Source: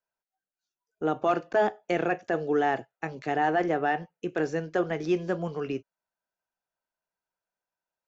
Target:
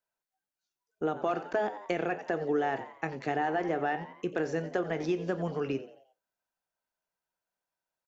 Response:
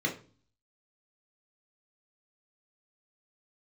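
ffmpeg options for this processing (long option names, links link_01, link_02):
-filter_complex "[0:a]asplit=5[link_01][link_02][link_03][link_04][link_05];[link_02]adelay=88,afreqshift=93,volume=-16.5dB[link_06];[link_03]adelay=176,afreqshift=186,volume=-24.2dB[link_07];[link_04]adelay=264,afreqshift=279,volume=-32dB[link_08];[link_05]adelay=352,afreqshift=372,volume=-39.7dB[link_09];[link_01][link_06][link_07][link_08][link_09]amix=inputs=5:normalize=0,acompressor=threshold=-26dB:ratio=6,asplit=2[link_10][link_11];[1:a]atrim=start_sample=2205,afade=type=out:start_time=0.28:duration=0.01,atrim=end_sample=12789,adelay=27[link_12];[link_11][link_12]afir=irnorm=-1:irlink=0,volume=-25dB[link_13];[link_10][link_13]amix=inputs=2:normalize=0"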